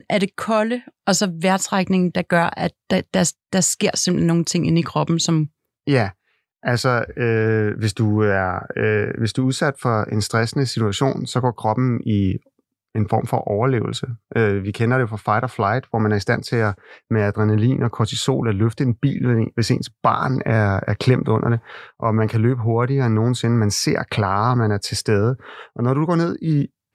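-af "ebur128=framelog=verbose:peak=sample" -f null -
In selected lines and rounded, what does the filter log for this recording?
Integrated loudness:
  I:         -19.9 LUFS
  Threshold: -30.1 LUFS
Loudness range:
  LRA:         2.1 LU
  Threshold: -40.1 LUFS
  LRA low:   -21.3 LUFS
  LRA high:  -19.1 LUFS
Sample peak:
  Peak:       -2.4 dBFS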